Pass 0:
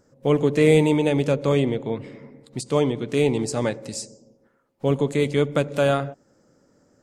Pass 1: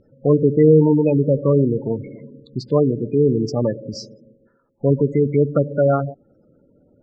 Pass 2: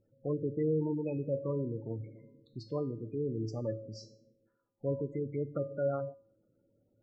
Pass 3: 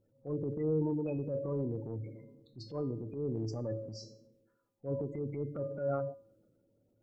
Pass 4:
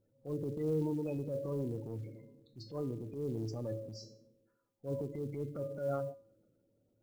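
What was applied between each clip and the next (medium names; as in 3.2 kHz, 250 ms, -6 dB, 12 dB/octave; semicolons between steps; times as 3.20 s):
bass shelf 100 Hz +5.5 dB; spectral gate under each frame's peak -15 dB strong; Chebyshev low-pass 5.7 kHz, order 5; trim +4 dB
feedback comb 110 Hz, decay 0.46 s, harmonics odd, mix 80%; trim -6 dB
transient shaper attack -9 dB, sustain +4 dB
short-mantissa float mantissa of 4-bit; trim -2 dB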